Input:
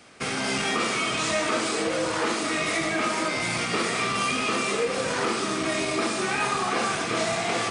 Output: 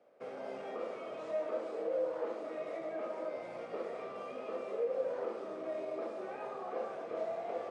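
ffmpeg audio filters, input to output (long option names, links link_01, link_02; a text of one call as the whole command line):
ffmpeg -i in.wav -af "bandpass=frequency=550:width_type=q:width=4.8:csg=0,volume=-2.5dB" out.wav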